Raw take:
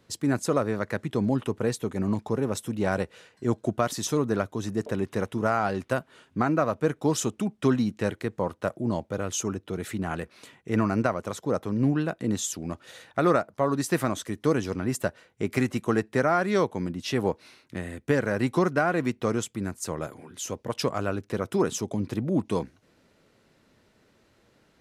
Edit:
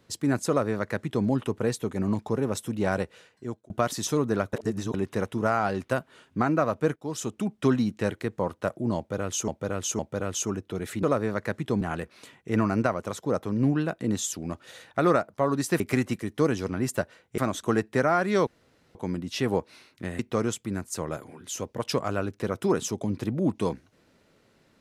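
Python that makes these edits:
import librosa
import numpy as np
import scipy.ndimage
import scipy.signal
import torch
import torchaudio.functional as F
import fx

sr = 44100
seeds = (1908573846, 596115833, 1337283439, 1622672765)

y = fx.edit(x, sr, fx.duplicate(start_s=0.48, length_s=0.78, to_s=10.01),
    fx.fade_out_span(start_s=2.81, length_s=0.89, curve='qsin'),
    fx.reverse_span(start_s=4.53, length_s=0.41),
    fx.fade_in_from(start_s=6.96, length_s=0.53, floor_db=-16.5),
    fx.repeat(start_s=8.97, length_s=0.51, count=3),
    fx.swap(start_s=14.0, length_s=0.25, other_s=15.44, other_length_s=0.39),
    fx.insert_room_tone(at_s=16.67, length_s=0.48),
    fx.cut(start_s=17.91, length_s=1.18), tone=tone)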